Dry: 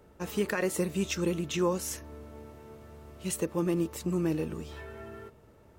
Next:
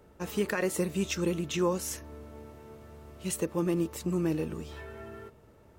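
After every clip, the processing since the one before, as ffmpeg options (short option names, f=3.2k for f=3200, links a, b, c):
-af anull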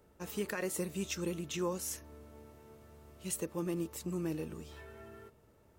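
-af "highshelf=f=5.5k:g=6.5,volume=-7.5dB"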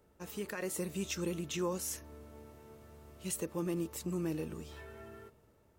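-filter_complex "[0:a]asplit=2[a][b];[b]alimiter=level_in=6dB:limit=-24dB:level=0:latency=1,volume=-6dB,volume=-2.5dB[c];[a][c]amix=inputs=2:normalize=0,dynaudnorm=f=190:g=7:m=4dB,volume=-7.5dB"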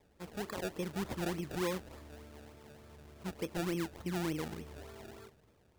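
-af "aresample=11025,aresample=44100,acrusher=samples=29:mix=1:aa=0.000001:lfo=1:lforange=29:lforate=3.4"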